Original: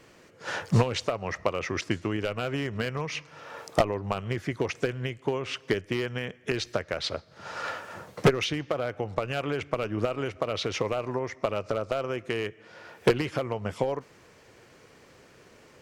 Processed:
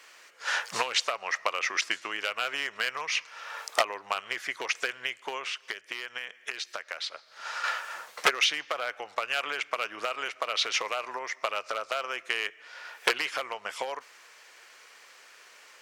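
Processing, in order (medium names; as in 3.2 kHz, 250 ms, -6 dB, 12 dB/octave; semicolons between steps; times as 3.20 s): high-pass 1.2 kHz 12 dB/octave; 5.39–7.64 s: compression 12:1, threshold -38 dBFS, peak gain reduction 12 dB; trim +6.5 dB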